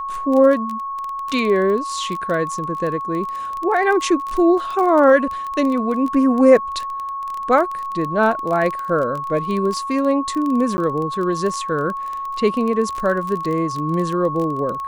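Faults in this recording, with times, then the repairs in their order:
crackle 20 per s -23 dBFS
whine 1.1 kHz -24 dBFS
10.77–10.78 s: dropout 10 ms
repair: de-click; band-stop 1.1 kHz, Q 30; interpolate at 10.77 s, 10 ms

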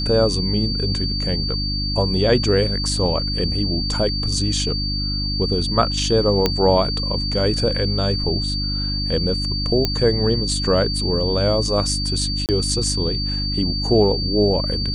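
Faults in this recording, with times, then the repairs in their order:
hum 50 Hz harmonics 6 -25 dBFS
whine 4.6 kHz -24 dBFS
6.46 s: pop -3 dBFS
9.85 s: pop -5 dBFS
12.46–12.49 s: dropout 28 ms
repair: de-click; de-hum 50 Hz, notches 6; band-stop 4.6 kHz, Q 30; interpolate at 12.46 s, 28 ms

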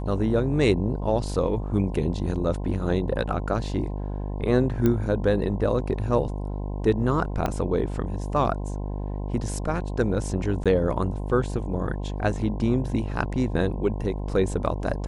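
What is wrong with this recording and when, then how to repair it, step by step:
buzz 50 Hz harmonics 21 -30 dBFS
4.86 s: pop -11 dBFS
7.46 s: pop -12 dBFS
10.64–10.66 s: dropout 16 ms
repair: de-click; de-hum 50 Hz, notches 21; interpolate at 10.64 s, 16 ms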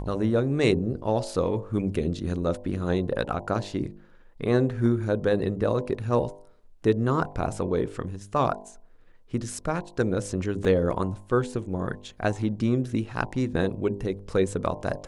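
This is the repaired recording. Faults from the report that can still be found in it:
4.86 s: pop
7.46 s: pop

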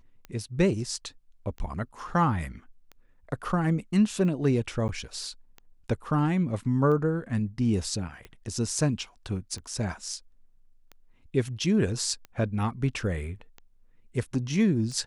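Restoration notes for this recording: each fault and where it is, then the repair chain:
tick 45 rpm -28 dBFS
4.88–4.89 s: dropout 9.9 ms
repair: de-click; interpolate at 4.88 s, 9.9 ms

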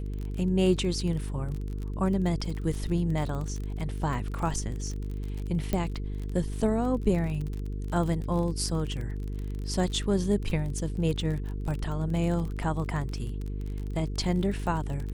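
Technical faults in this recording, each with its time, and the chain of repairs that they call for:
buzz 50 Hz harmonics 9 -33 dBFS
crackle 35 per s -33 dBFS
5.73 s: pop -14 dBFS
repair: de-click; de-hum 50 Hz, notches 9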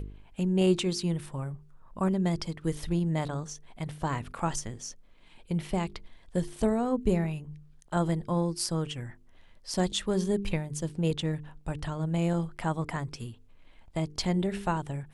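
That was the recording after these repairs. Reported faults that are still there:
nothing left

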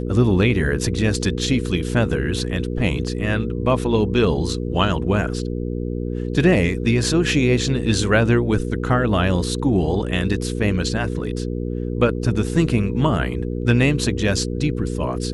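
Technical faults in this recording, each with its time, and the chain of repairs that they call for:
hum 60 Hz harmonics 8 -25 dBFS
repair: de-hum 60 Hz, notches 8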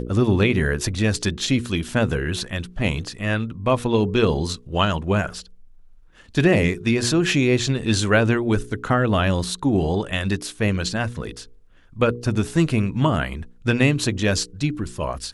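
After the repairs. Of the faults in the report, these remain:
nothing left

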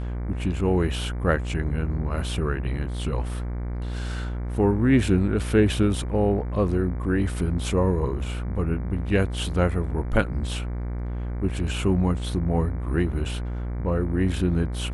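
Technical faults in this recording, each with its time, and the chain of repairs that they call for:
buzz 60 Hz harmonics 39 -29 dBFS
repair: de-hum 60 Hz, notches 39

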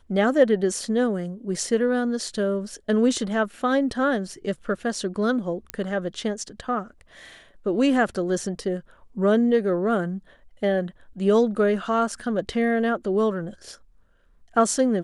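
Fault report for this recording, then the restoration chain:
5.70 s: pop -12 dBFS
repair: de-click

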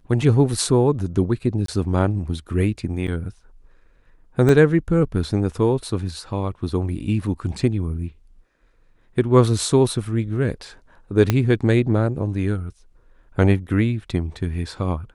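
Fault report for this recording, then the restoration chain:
1.66–1.68 s: dropout 23 ms
3.07–3.08 s: dropout 8.6 ms
4.49 s: dropout 2.3 ms
11.30 s: pop -4 dBFS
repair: de-click; interpolate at 1.66 s, 23 ms; interpolate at 3.07 s, 8.6 ms; interpolate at 4.49 s, 2.3 ms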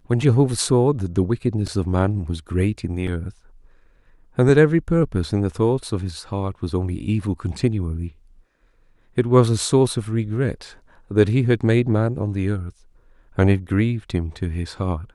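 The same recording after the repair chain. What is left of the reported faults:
11.30 s: pop

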